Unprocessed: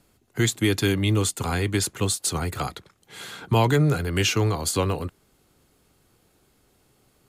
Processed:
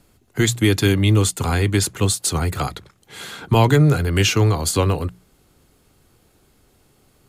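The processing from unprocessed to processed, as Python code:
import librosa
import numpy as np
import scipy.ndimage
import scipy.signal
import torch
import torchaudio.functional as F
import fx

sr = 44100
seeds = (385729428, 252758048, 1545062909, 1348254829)

y = fx.low_shelf(x, sr, hz=120.0, db=6.0)
y = fx.hum_notches(y, sr, base_hz=60, count=3)
y = y * 10.0 ** (4.0 / 20.0)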